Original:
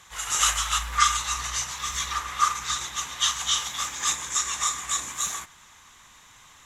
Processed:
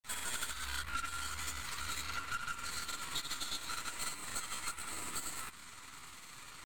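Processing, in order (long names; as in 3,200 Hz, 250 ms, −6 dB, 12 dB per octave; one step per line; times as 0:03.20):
gain on one half-wave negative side −12 dB
granular cloud, pitch spread up and down by 0 semitones
dynamic equaliser 5,700 Hz, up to −4 dB, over −46 dBFS, Q 1.5
downward compressor 5 to 1, threshold −42 dBFS, peak gain reduction 19.5 dB
pitch shifter +2.5 semitones
hollow resonant body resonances 270/960/2,000 Hz, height 6 dB
level +5 dB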